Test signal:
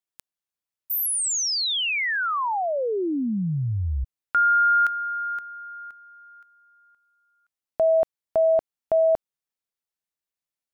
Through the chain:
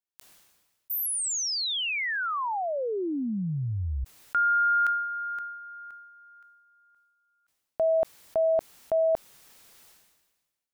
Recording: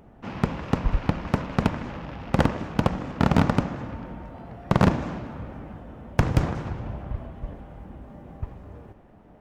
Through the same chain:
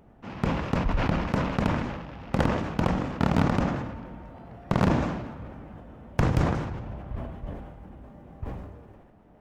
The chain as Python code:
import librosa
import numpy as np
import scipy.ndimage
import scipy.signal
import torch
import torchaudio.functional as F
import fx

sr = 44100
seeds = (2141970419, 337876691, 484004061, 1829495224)

y = fx.sustainer(x, sr, db_per_s=44.0)
y = F.gain(torch.from_numpy(y), -4.5).numpy()